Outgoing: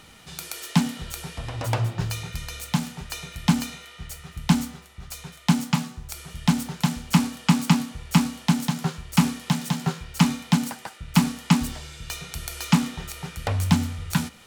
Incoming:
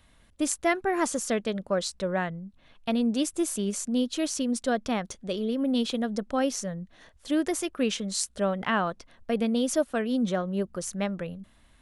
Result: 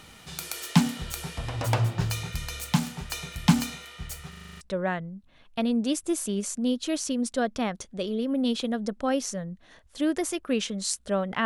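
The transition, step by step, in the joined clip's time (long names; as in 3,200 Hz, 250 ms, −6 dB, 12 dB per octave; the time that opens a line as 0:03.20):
outgoing
0:04.29: stutter in place 0.04 s, 8 plays
0:04.61: continue with incoming from 0:01.91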